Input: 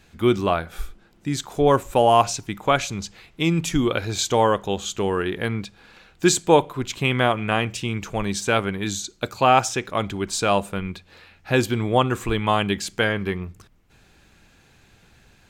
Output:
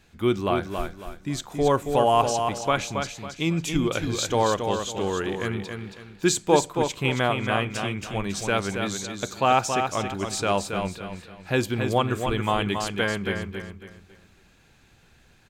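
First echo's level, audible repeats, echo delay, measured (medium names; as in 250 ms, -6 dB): -6.0 dB, 4, 275 ms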